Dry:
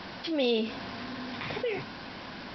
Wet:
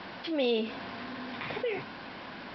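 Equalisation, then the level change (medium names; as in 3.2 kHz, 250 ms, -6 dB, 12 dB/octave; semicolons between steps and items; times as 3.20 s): low-pass 3.6 kHz 12 dB/octave; bass shelf 150 Hz -8 dB; 0.0 dB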